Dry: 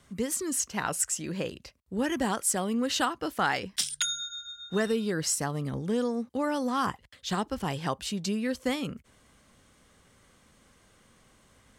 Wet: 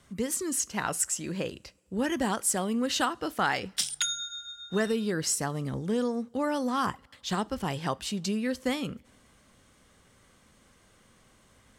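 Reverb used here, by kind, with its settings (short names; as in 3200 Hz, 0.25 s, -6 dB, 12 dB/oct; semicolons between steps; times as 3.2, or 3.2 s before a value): two-slope reverb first 0.31 s, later 2.4 s, from -21 dB, DRR 19.5 dB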